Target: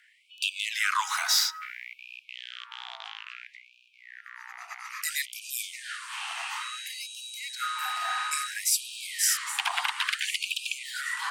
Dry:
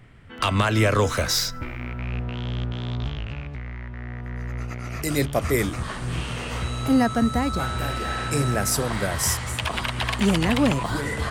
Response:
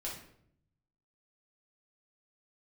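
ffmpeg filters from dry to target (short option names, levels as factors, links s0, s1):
-af "afreqshift=-57,afftfilt=real='re*gte(b*sr/1024,670*pow(2400/670,0.5+0.5*sin(2*PI*0.59*pts/sr)))':imag='im*gte(b*sr/1024,670*pow(2400/670,0.5+0.5*sin(2*PI*0.59*pts/sr)))':win_size=1024:overlap=0.75"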